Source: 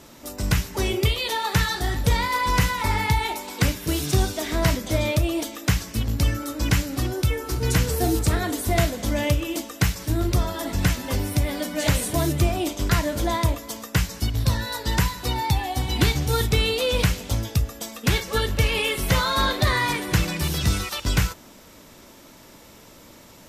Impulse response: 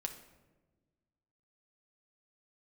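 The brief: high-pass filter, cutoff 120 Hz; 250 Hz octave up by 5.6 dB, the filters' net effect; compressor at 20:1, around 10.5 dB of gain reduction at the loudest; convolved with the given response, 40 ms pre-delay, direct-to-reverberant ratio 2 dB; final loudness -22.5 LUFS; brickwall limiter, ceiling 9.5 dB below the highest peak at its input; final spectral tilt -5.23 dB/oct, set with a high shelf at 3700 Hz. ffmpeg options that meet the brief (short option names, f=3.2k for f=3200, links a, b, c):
-filter_complex "[0:a]highpass=120,equalizer=f=250:t=o:g=8.5,highshelf=f=3.7k:g=-6.5,acompressor=threshold=-25dB:ratio=20,alimiter=limit=-24dB:level=0:latency=1,asplit=2[a][b];[1:a]atrim=start_sample=2205,adelay=40[c];[b][c]afir=irnorm=-1:irlink=0,volume=-1dB[d];[a][d]amix=inputs=2:normalize=0,volume=8dB"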